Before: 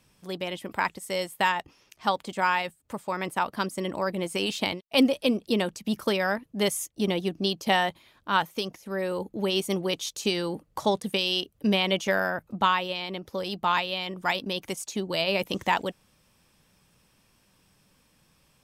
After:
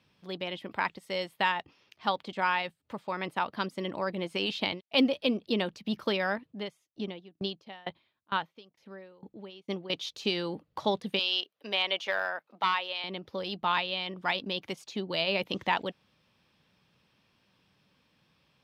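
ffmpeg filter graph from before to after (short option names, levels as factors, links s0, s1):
-filter_complex "[0:a]asettb=1/sr,asplit=3[s0][s1][s2];[s0]atrim=end=6.504[s3];[s1]atrim=start=6.5:end=9.9,asetpts=PTS-STARTPTS,afade=t=in:d=0.004:c=qsin,afade=t=out:st=3.396:d=0.004:c=qsin,highshelf=f=6400:g=-9,aeval=exprs='val(0)*pow(10,-28*if(lt(mod(2.2*n/s,1),2*abs(2.2)/1000),1-mod(2.2*n/s,1)/(2*abs(2.2)/1000),(mod(2.2*n/s,1)-2*abs(2.2)/1000)/(1-2*abs(2.2)/1000))/20)':c=same[s4];[s2]atrim=start=9.896[s5];[s3][s4]acrossfade=d=0.004:c1=hsin:c2=qsin[s6];[s6][s5]acrossfade=d=0.004:c1=qsin:c2=hsin,asettb=1/sr,asplit=3[s7][s8][s9];[s7]atrim=end=11.194[s10];[s8]atrim=start=11.19:end=13.04,asetpts=PTS-STARTPTS,afade=t=in:d=0.004:c=qsin,afade=t=out:st=1.846:d=0.004:c=qsin,highpass=600,aeval=exprs='clip(val(0),-1,0.126)':c=same[s11];[s9]atrim=start=13.036[s12];[s10][s11]acrossfade=d=0.004:c1=hsin:c2=qsin[s13];[s13][s12]acrossfade=d=0.004:c1=qsin:c2=hsin,highpass=83,highshelf=f=5700:t=q:w=1.5:g=-13,volume=0.631"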